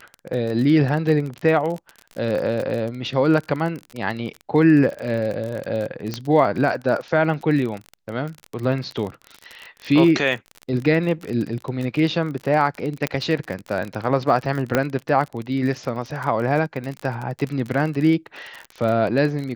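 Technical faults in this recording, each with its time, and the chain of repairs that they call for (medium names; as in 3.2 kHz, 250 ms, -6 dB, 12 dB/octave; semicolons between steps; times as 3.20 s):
crackle 34 per s -26 dBFS
6.14 s: pop -11 dBFS
13.07 s: pop -8 dBFS
14.75 s: pop -5 dBFS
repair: de-click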